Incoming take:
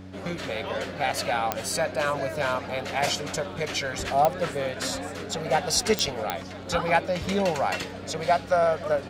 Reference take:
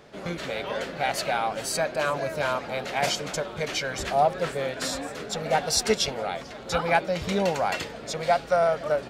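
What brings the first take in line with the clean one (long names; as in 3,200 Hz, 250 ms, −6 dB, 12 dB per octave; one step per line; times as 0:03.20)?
click removal
hum removal 93.6 Hz, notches 3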